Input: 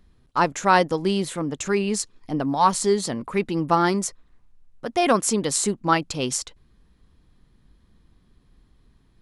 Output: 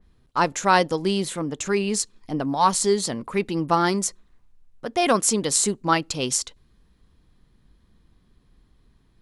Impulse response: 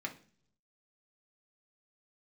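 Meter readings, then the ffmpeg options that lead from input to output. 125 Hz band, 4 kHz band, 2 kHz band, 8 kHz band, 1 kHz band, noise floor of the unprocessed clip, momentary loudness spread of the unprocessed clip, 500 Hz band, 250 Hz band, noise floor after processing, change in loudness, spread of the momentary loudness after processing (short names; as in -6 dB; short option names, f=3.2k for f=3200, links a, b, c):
-1.0 dB, +2.0 dB, 0.0 dB, +3.0 dB, -0.5 dB, -60 dBFS, 9 LU, -0.5 dB, -1.0 dB, -61 dBFS, 0.0 dB, 9 LU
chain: -filter_complex "[0:a]asplit=2[a][b];[1:a]atrim=start_sample=2205,asetrate=74970,aresample=44100[c];[b][c]afir=irnorm=-1:irlink=0,volume=-18dB[d];[a][d]amix=inputs=2:normalize=0,adynamicequalizer=threshold=0.0251:dfrequency=3000:dqfactor=0.7:tfrequency=3000:tqfactor=0.7:attack=5:release=100:ratio=0.375:range=2:mode=boostabove:tftype=highshelf,volume=-1dB"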